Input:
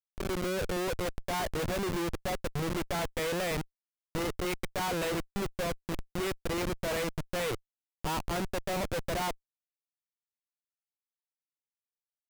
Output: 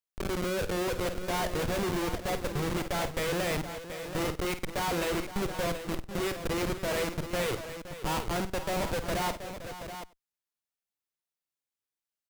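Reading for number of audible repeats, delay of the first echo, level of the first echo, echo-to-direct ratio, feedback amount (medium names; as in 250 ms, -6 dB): 6, 51 ms, -11.0 dB, -6.5 dB, no regular repeats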